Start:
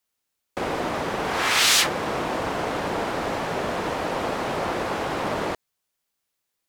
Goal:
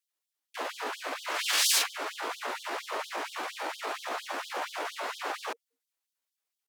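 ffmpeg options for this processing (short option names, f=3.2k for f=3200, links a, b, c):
-af "bandreject=f=50:t=h:w=6,bandreject=f=100:t=h:w=6,bandreject=f=150:t=h:w=6,bandreject=f=200:t=h:w=6,bandreject=f=250:t=h:w=6,bandreject=f=300:t=h:w=6,bandreject=f=350:t=h:w=6,asetrate=58866,aresample=44100,atempo=0.749154,afftfilt=real='re*gte(b*sr/1024,220*pow(3100/220,0.5+0.5*sin(2*PI*4.3*pts/sr)))':imag='im*gte(b*sr/1024,220*pow(3100/220,0.5+0.5*sin(2*PI*4.3*pts/sr)))':win_size=1024:overlap=0.75,volume=-6dB"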